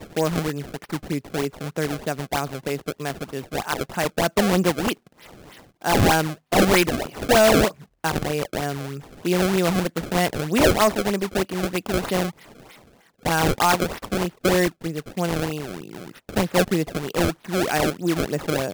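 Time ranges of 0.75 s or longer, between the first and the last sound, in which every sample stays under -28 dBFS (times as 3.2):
4.93–5.85
12.3–13.25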